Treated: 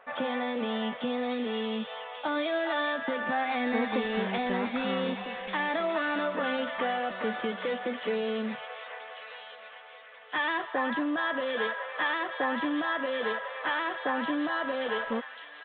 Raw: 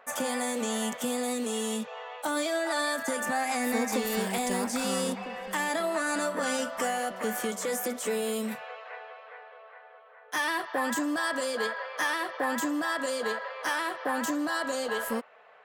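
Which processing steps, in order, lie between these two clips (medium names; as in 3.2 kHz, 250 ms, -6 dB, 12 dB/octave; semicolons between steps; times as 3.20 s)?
companded quantiser 6-bit; resampled via 8 kHz; feedback echo behind a high-pass 1140 ms, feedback 44%, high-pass 2.1 kHz, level -4.5 dB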